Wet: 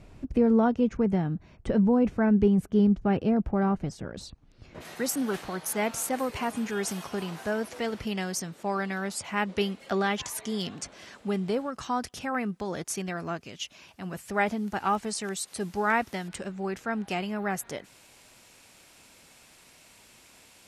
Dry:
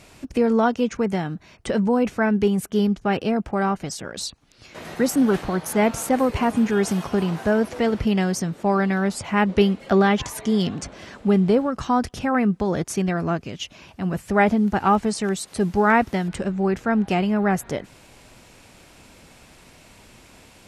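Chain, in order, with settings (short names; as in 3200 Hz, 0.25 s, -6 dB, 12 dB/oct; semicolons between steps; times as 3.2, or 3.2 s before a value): tilt -3 dB/oct, from 4.8 s +2 dB/oct; gain -7.5 dB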